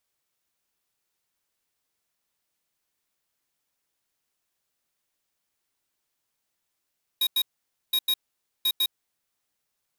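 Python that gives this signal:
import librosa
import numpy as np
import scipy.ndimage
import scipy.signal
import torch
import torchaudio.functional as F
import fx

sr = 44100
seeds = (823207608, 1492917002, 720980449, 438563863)

y = fx.beep_pattern(sr, wave='square', hz=3790.0, on_s=0.06, off_s=0.09, beeps=2, pause_s=0.51, groups=3, level_db=-23.0)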